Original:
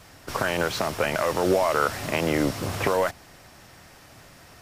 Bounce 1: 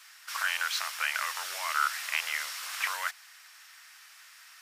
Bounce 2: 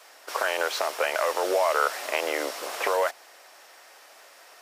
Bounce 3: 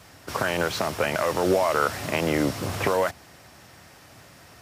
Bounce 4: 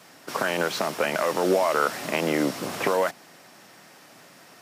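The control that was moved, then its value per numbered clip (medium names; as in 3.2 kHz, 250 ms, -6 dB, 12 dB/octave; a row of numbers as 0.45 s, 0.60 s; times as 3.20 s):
high-pass, cutoff frequency: 1.3 kHz, 460 Hz, 57 Hz, 170 Hz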